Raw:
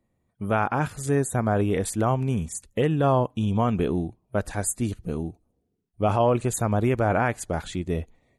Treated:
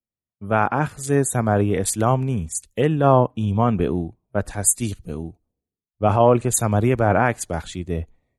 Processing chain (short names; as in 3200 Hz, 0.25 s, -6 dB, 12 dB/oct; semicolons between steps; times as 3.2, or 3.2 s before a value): three-band expander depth 70%; gain +4 dB